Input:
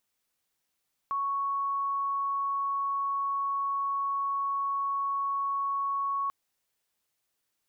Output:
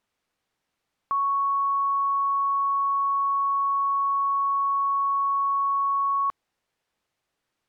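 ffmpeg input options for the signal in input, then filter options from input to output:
-f lavfi -i "aevalsrc='0.0447*sin(2*PI*1110*t)':duration=5.19:sample_rate=44100"
-af "aemphasis=mode=reproduction:type=75fm,acontrast=63"

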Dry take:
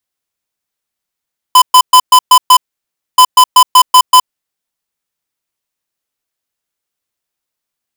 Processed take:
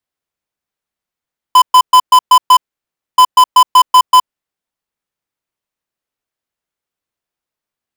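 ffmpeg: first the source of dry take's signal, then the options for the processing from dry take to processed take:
-f lavfi -i "aevalsrc='0.708*(2*lt(mod(1010*t,1),0.5)-1)*clip(min(mod(mod(t,1.63),0.19),0.07-mod(mod(t,1.63),0.19))/0.005,0,1)*lt(mod(t,1.63),1.14)':duration=3.26:sample_rate=44100"
-af "highshelf=frequency=3200:gain=-9"

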